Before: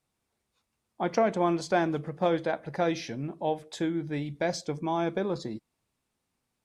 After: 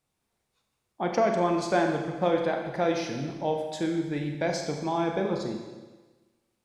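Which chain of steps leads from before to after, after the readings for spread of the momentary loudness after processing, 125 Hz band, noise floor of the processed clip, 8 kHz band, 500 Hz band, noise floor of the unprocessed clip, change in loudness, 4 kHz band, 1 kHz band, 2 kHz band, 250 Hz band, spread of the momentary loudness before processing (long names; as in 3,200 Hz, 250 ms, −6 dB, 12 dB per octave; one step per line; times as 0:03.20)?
7 LU, +1.0 dB, −79 dBFS, +2.0 dB, +2.0 dB, −82 dBFS, +1.5 dB, +1.5 dB, +1.5 dB, +2.0 dB, +1.5 dB, 8 LU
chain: four-comb reverb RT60 1.3 s, combs from 30 ms, DRR 3 dB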